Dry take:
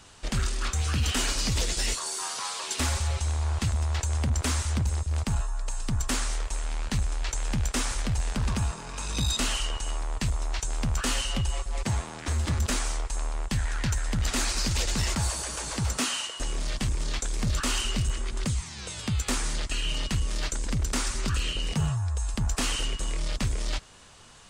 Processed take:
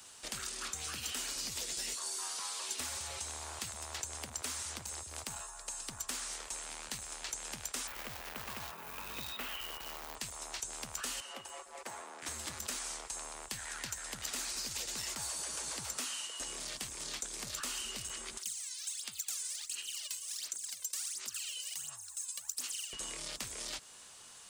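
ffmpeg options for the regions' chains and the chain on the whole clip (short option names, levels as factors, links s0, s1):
-filter_complex "[0:a]asettb=1/sr,asplit=3[s0][s1][s2];[s0]atrim=end=7.874[s3];[s1]atrim=start=7.87:end=10.15,asetpts=PTS-STARTPTS,afade=t=in:d=0.004:c=qsin,afade=t=out:st=2.276:d=0.004:c=qsin,lowpass=f=2900:w=0.5412,lowpass=f=2900:w=1.3066,acrusher=bits=3:mode=log:mix=0:aa=0.000001[s4];[s2]atrim=start=10.146[s5];[s3][s4]acrossfade=d=0.004:c1=hsin:c2=qsin[s6];[s6][s5]acrossfade=d=0.004:c1=qsin:c2=hsin,asettb=1/sr,asplit=3[s7][s8][s9];[s7]atrim=end=11.204[s10];[s8]atrim=start=11.2:end=12.22,asetpts=PTS-STARTPTS,afade=t=in:d=0.004:c=qsin,afade=t=out:st=1.016:d=0.004:c=qsin,highpass=f=79:p=1,acrossover=split=270 2000:gain=0.0708 1 0.251[s11][s12][s13];[s11][s12][s13]amix=inputs=3:normalize=0[s14];[s9]atrim=start=12.216[s15];[s10][s14]acrossfade=d=0.004:c1=hsin:c2=qsin[s16];[s16][s15]acrossfade=d=0.004:c1=qsin:c2=hsin,asettb=1/sr,asplit=3[s17][s18][s19];[s17]atrim=end=18.374[s20];[s18]atrim=start=18.37:end=22.93,asetpts=PTS-STARTPTS,afade=t=in:d=0.004:c=qsin,afade=t=out:st=4.556:d=0.004:c=qsin,aderivative,aphaser=in_gain=1:out_gain=1:delay=2:decay=0.73:speed=1.4:type=sinusoidal[s21];[s19]atrim=start=22.926[s22];[s20][s21]acrossfade=d=0.004:c1=hsin:c2=qsin[s23];[s23][s22]acrossfade=d=0.004:c1=qsin:c2=hsin,aemphasis=mode=production:type=bsi,acrossover=split=120|440|6600[s24][s25][s26][s27];[s24]acompressor=threshold=0.00251:ratio=4[s28];[s25]acompressor=threshold=0.00398:ratio=4[s29];[s26]acompressor=threshold=0.02:ratio=4[s30];[s27]acompressor=threshold=0.0112:ratio=4[s31];[s28][s29][s30][s31]amix=inputs=4:normalize=0,volume=0.473"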